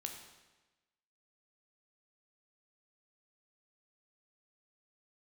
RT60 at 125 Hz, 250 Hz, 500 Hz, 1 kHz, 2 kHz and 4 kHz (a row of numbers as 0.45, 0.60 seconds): 1.2, 1.2, 1.2, 1.1, 1.1, 1.1 seconds